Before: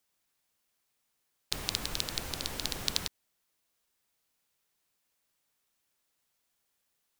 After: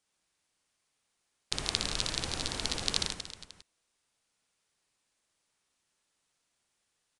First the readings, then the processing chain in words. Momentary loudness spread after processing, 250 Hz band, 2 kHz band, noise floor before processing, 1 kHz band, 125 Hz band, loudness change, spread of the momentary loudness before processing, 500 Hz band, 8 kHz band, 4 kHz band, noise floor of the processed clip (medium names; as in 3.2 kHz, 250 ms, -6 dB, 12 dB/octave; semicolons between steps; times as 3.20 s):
12 LU, +2.0 dB, +2.5 dB, -79 dBFS, +2.5 dB, +2.0 dB, +1.5 dB, 4 LU, +2.5 dB, +2.0 dB, +2.0 dB, -80 dBFS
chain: reverse bouncing-ball echo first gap 60 ms, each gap 1.3×, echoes 5; resampled via 22.05 kHz